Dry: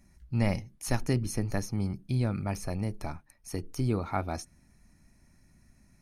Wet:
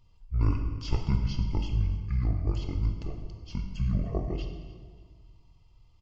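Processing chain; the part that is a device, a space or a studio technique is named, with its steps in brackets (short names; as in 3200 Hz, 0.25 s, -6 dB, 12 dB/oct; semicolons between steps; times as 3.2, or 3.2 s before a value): monster voice (pitch shift -12 st; low shelf 190 Hz +7 dB; reverb RT60 1.6 s, pre-delay 19 ms, DRR 4.5 dB); feedback echo 0.293 s, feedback 39%, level -21 dB; gain -4.5 dB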